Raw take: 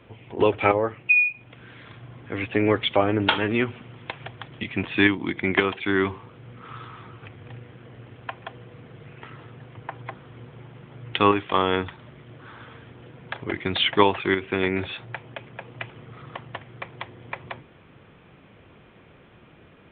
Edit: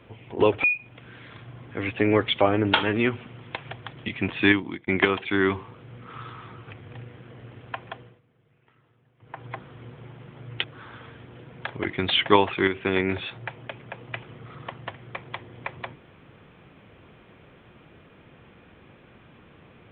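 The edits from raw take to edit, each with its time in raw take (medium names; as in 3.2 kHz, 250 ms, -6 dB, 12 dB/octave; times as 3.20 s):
0.64–1.19 s: delete
4.97–5.42 s: fade out equal-power
8.46–10.03 s: dip -20.5 dB, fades 0.30 s
11.19–12.31 s: delete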